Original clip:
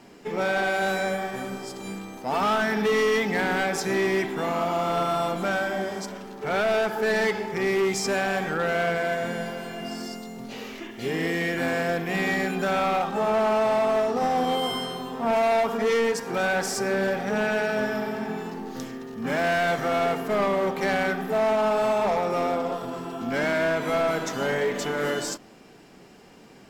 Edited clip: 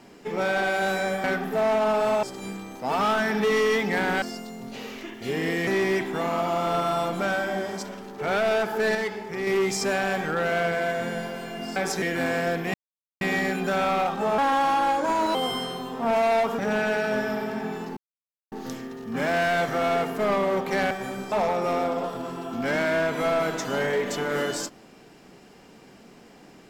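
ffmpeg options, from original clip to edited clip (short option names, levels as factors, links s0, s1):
-filter_complex "[0:a]asplit=16[s0][s1][s2][s3][s4][s5][s6][s7][s8][s9][s10][s11][s12][s13][s14][s15];[s0]atrim=end=1.242[s16];[s1]atrim=start=21.008:end=22.002[s17];[s2]atrim=start=1.648:end=3.642[s18];[s3]atrim=start=9.988:end=11.442[s19];[s4]atrim=start=3.898:end=7.182[s20];[s5]atrim=start=7.178:end=7.702,asetpts=PTS-STARTPTS,volume=0.596[s21];[s6]atrim=start=7.698:end=9.992[s22];[s7]atrim=start=3.638:end=3.902[s23];[s8]atrim=start=11.438:end=12.16,asetpts=PTS-STARTPTS,afade=t=out:st=0.718:d=0.004:c=hsin,apad=pad_dur=0.47[s24];[s9]atrim=start=12.16:end=13.334,asetpts=PTS-STARTPTS,afade=t=in:d=0.004:c=hsin[s25];[s10]atrim=start=13.33:end=14.55,asetpts=PTS-STARTPTS,asetrate=55566,aresample=44100[s26];[s11]atrim=start=14.546:end=15.792[s27];[s12]atrim=start=17.238:end=18.62,asetpts=PTS-STARTPTS,afade=t=out:st=1.378:d=0.004:c=hsin,apad=pad_dur=0.55[s28];[s13]atrim=start=18.62:end=21.012,asetpts=PTS-STARTPTS,afade=t=in:d=0.004:c=hsin[s29];[s14]atrim=start=1.238:end=1.652[s30];[s15]atrim=start=21.998[s31];[s16][s17]acrossfade=d=0.004:c1=hsin:c2=hsin[s32];[s32][s18]acrossfade=d=0.004:c1=hsin:c2=hsin[s33];[s33][s19]acrossfade=d=0.004:c1=hsin:c2=hsin[s34];[s34][s20]acrossfade=d=0.004:c1=hsin:c2=hsin[s35];[s35][s21]acrossfade=d=0.004:c1=hsin:c2=hsin[s36];[s36][s22]acrossfade=d=0.004:c1=hsin:c2=hsin[s37];[s37][s23]acrossfade=d=0.004:c1=hsin:c2=hsin[s38];[s24][s25]concat=n=2:v=0:a=1[s39];[s38][s39]acrossfade=d=0.004:c1=hsin:c2=hsin[s40];[s40][s26]acrossfade=d=0.004:c1=hsin:c2=hsin[s41];[s41][s27]acrossfade=d=0.004:c1=hsin:c2=hsin[s42];[s28][s29]concat=n=2:v=0:a=1[s43];[s42][s43]acrossfade=d=0.004:c1=hsin:c2=hsin[s44];[s44][s30]acrossfade=d=0.004:c1=hsin:c2=hsin[s45];[s45][s31]acrossfade=d=0.004:c1=hsin:c2=hsin"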